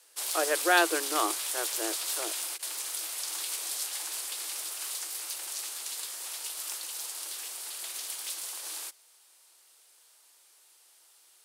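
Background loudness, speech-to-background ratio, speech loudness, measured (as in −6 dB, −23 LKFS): −33.0 LKFS, 3.5 dB, −29.5 LKFS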